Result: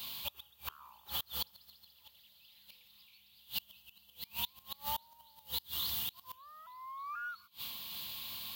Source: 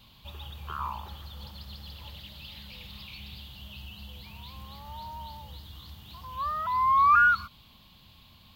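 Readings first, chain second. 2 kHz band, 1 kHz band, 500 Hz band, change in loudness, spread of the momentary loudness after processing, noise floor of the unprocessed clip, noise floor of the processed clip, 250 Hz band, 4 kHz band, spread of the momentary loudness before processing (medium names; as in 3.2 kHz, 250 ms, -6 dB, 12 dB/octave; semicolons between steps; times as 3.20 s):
-19.0 dB, -20.0 dB, -7.0 dB, -15.5 dB, 22 LU, -56 dBFS, -66 dBFS, -11.0 dB, +2.5 dB, 24 LU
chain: RIAA curve recording; inverted gate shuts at -31 dBFS, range -29 dB; random flutter of the level, depth 55%; trim +10 dB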